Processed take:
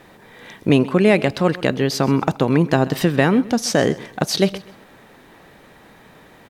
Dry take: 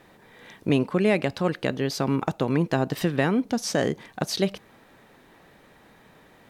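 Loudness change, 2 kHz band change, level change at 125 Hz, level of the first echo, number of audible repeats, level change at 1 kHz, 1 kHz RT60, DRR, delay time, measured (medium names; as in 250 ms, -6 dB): +7.0 dB, +7.0 dB, +7.0 dB, -19.0 dB, 2, +7.0 dB, no reverb, no reverb, 130 ms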